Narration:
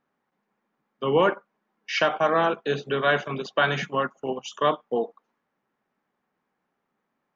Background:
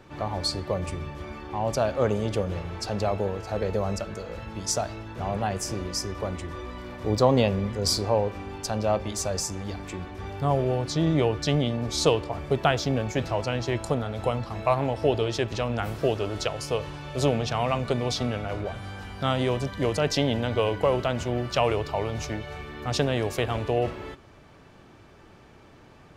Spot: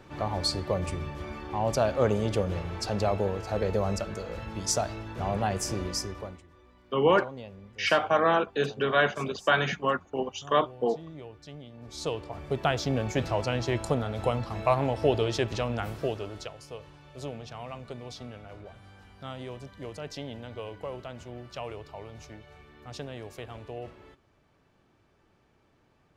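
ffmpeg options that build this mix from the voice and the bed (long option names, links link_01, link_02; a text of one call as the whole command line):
ffmpeg -i stem1.wav -i stem2.wav -filter_complex "[0:a]adelay=5900,volume=-1.5dB[link_01];[1:a]volume=19.5dB,afade=type=out:start_time=5.88:duration=0.55:silence=0.0944061,afade=type=in:start_time=11.72:duration=1.43:silence=0.1,afade=type=out:start_time=15.46:duration=1.12:silence=0.211349[link_02];[link_01][link_02]amix=inputs=2:normalize=0" out.wav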